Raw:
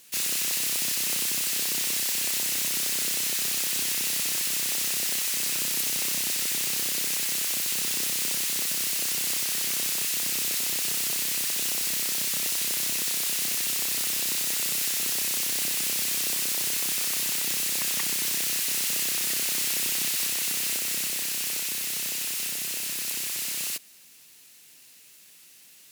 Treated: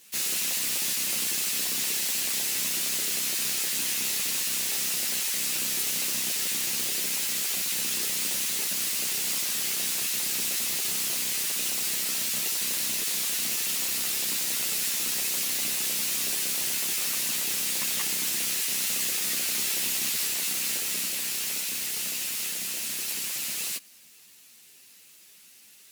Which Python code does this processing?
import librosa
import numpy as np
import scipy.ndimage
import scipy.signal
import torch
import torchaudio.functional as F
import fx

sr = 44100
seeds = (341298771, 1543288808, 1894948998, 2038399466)

y = fx.ensemble(x, sr)
y = F.gain(torch.from_numpy(y), 2.5).numpy()